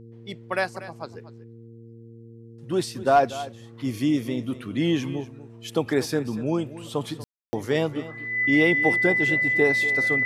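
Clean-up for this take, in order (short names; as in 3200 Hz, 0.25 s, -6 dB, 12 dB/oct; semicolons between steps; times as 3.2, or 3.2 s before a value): de-hum 115.1 Hz, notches 4; notch 2000 Hz, Q 30; room tone fill 7.24–7.53; inverse comb 0.239 s -15.5 dB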